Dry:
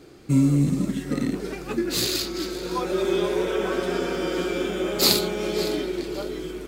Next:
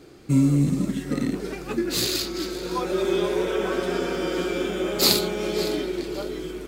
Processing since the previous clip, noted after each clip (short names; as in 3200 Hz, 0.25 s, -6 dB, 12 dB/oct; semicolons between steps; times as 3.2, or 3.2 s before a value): nothing audible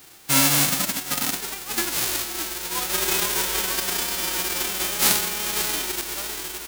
spectral whitening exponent 0.1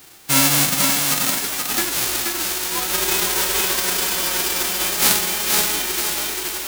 thinning echo 0.478 s, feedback 40%, high-pass 240 Hz, level -3.5 dB; gain +2.5 dB